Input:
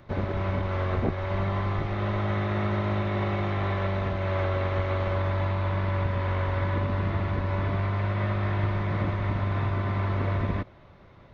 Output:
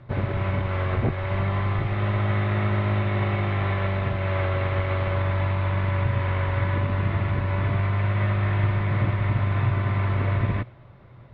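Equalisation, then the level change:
low-pass filter 3,500 Hz 12 dB per octave
parametric band 120 Hz +13.5 dB 0.34 octaves
dynamic equaliser 2,600 Hz, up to +6 dB, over −49 dBFS, Q 0.9
0.0 dB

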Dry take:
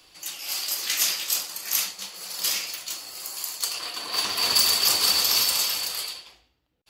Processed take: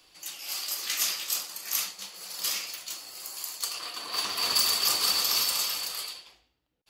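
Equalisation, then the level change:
parametric band 82 Hz −3.5 dB 1.1 octaves
dynamic equaliser 1,200 Hz, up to +5 dB, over −53 dBFS, Q 7.4
−4.5 dB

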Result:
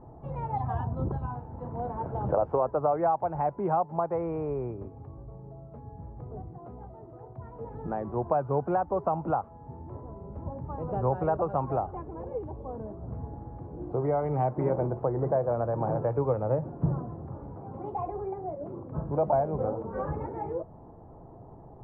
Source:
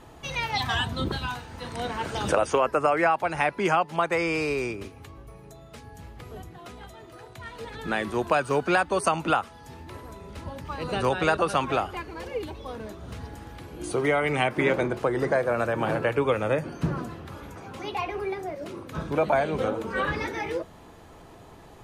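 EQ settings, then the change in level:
Chebyshev low-pass filter 850 Hz, order 3
dynamic equaliser 270 Hz, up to −5 dB, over −38 dBFS, Q 0.9
parametric band 130 Hz +6 dB 0.48 octaves
0.0 dB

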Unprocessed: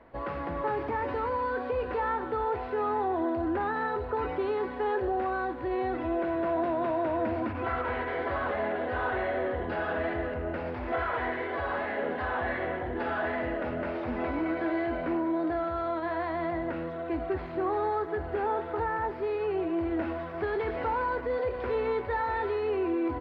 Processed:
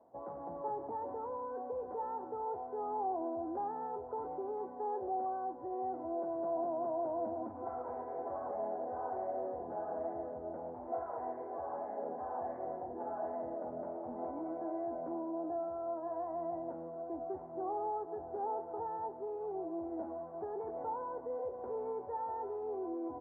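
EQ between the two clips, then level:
high-pass filter 140 Hz 12 dB per octave
transistor ladder low-pass 900 Hz, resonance 55%
high-frequency loss of the air 250 metres
−2.0 dB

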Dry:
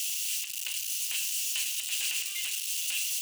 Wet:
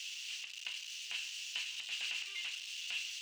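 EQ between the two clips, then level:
high-frequency loss of the air 180 metres
−1.5 dB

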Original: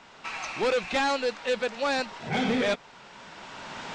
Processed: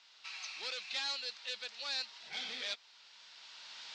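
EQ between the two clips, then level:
resonant band-pass 4,400 Hz, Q 2.4
0.0 dB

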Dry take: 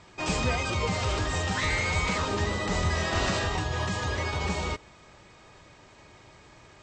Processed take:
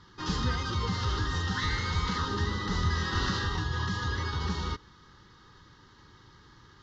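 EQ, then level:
phaser with its sweep stopped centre 2,400 Hz, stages 6
0.0 dB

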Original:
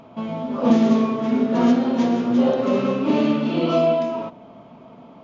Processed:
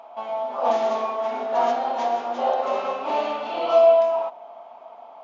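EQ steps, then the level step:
high-pass with resonance 760 Hz, resonance Q 4.9
−3.5 dB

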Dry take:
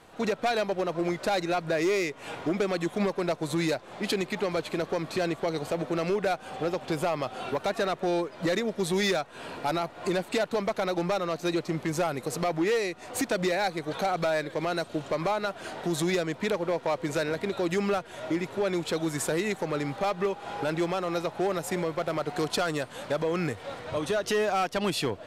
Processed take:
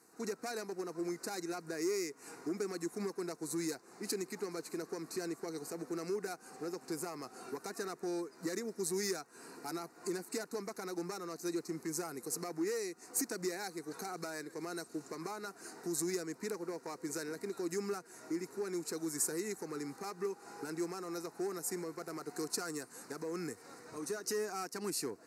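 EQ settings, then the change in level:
high-pass filter 430 Hz 12 dB per octave
flat-topped bell 1,600 Hz −14 dB 2.4 octaves
phaser with its sweep stopped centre 1,400 Hz, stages 4
+2.0 dB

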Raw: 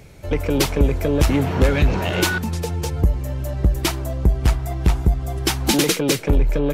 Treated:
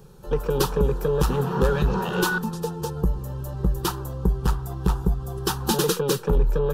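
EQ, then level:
parametric band 7,000 Hz −6 dB 1.7 octaves
dynamic equaliser 1,600 Hz, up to +3 dB, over −34 dBFS, Q 0.75
phaser with its sweep stopped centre 430 Hz, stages 8
0.0 dB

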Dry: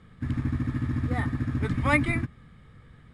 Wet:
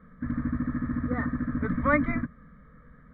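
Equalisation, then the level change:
low-pass filter 2,400 Hz 24 dB per octave
phaser with its sweep stopped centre 540 Hz, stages 8
+3.5 dB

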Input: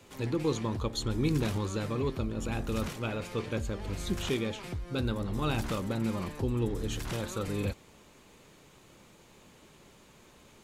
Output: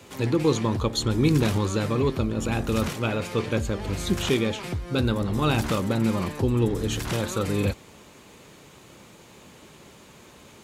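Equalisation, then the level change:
high-pass filter 57 Hz
+8.0 dB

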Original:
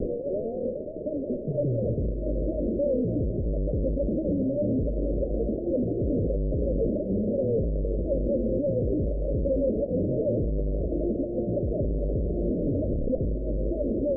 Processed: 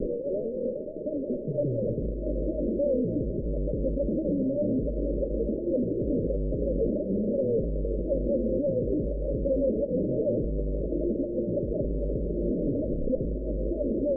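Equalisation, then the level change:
Butterworth band-reject 710 Hz, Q 4.6
parametric band 84 Hz −12 dB 0.76 octaves
0.0 dB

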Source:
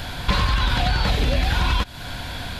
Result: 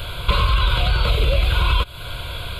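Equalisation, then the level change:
phaser with its sweep stopped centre 1,200 Hz, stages 8
+4.0 dB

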